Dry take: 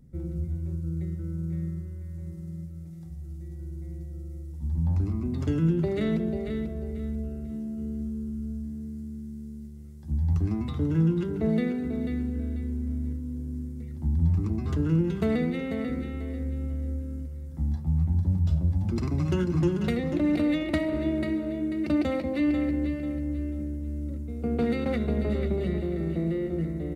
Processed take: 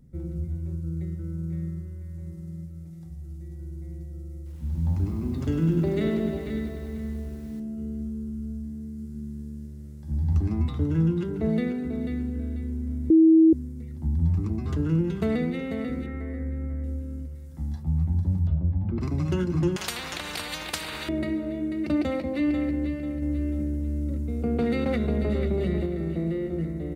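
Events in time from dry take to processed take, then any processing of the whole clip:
0:04.36–0:07.60: feedback echo at a low word length 99 ms, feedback 80%, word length 9 bits, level −8.5 dB
0:08.94–0:10.33: thrown reverb, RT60 2.8 s, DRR −1 dB
0:13.10–0:13.53: beep over 322 Hz −12 dBFS
0:16.06–0:16.84: high shelf with overshoot 2,400 Hz −7 dB, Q 3
0:17.35–0:17.83: tilt shelving filter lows −3.5 dB
0:18.47–0:19.01: high-frequency loss of the air 500 metres
0:19.76–0:21.09: every bin compressed towards the loudest bin 10 to 1
0:23.22–0:25.86: envelope flattener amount 50%

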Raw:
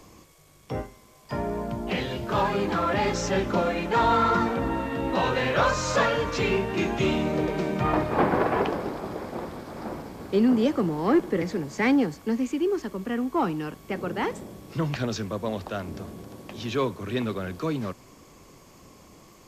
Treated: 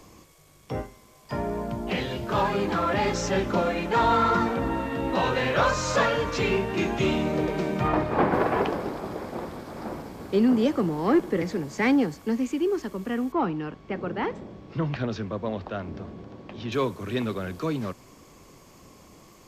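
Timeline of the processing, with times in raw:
0:07.88–0:08.33: high-shelf EQ 7,100 Hz −9 dB
0:13.32–0:16.72: high-frequency loss of the air 190 metres

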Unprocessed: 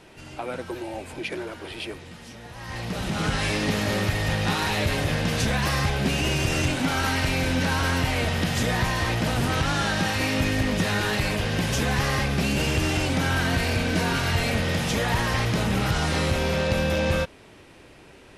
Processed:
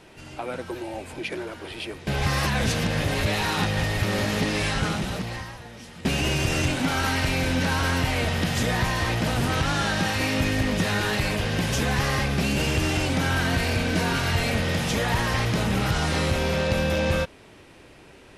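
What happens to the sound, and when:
0:02.07–0:06.05: reverse

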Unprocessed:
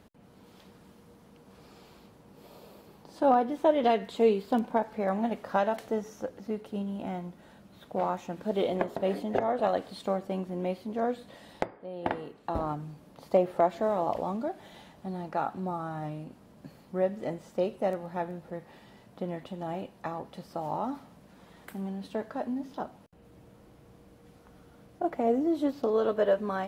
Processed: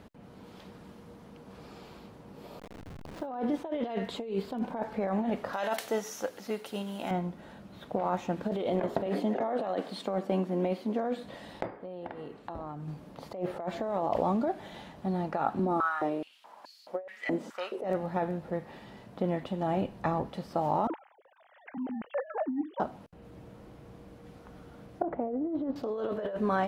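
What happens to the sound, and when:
0:02.59–0:03.27: hold until the input has moved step −43.5 dBFS
0:05.53–0:07.11: spectral tilt +4 dB per octave
0:09.06–0:11.24: high-pass filter 170 Hz 24 dB per octave
0:11.74–0:12.88: downward compressor, threshold −42 dBFS
0:15.59–0:17.84: high-pass on a step sequencer 4.7 Hz 260–4,600 Hz
0:19.77–0:20.29: low-shelf EQ 150 Hz +10.5 dB
0:20.87–0:22.80: three sine waves on the formant tracks
0:25.02–0:25.76: Bessel low-pass filter 1,000 Hz
whole clip: high-shelf EQ 5,800 Hz −8.5 dB; compressor whose output falls as the input rises −32 dBFS, ratio −1; level +1.5 dB

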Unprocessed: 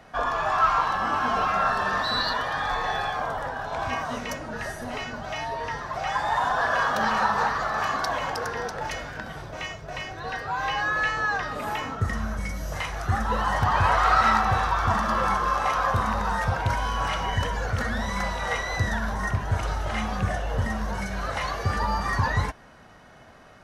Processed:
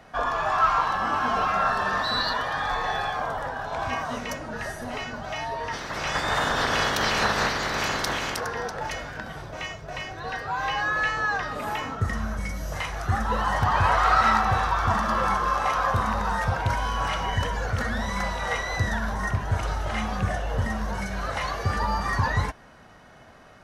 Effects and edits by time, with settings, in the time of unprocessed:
0:05.72–0:08.39: ceiling on every frequency bin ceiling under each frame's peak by 20 dB

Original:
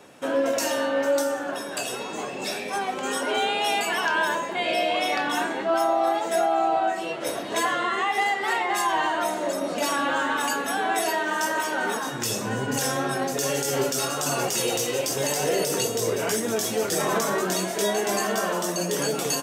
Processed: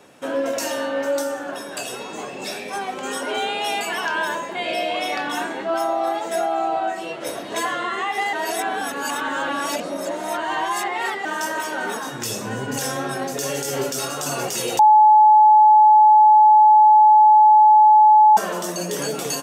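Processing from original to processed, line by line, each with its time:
0:08.33–0:11.25: reverse
0:14.79–0:18.37: beep over 856 Hz −8 dBFS

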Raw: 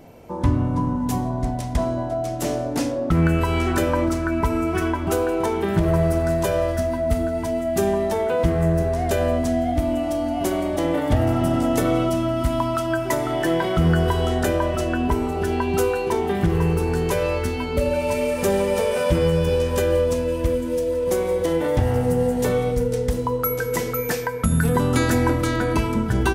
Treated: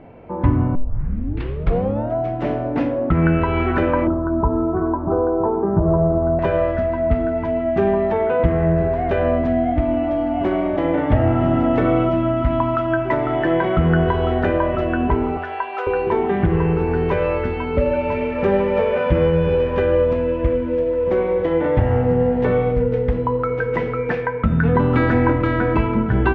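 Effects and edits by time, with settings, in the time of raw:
0:00.75: tape start 1.40 s
0:04.07–0:06.39: Butterworth low-pass 1,200 Hz
0:15.37–0:15.87: high-pass filter 600 Hz 24 dB per octave
whole clip: low-pass filter 2,500 Hz 24 dB per octave; hum removal 84.04 Hz, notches 38; level +3.5 dB

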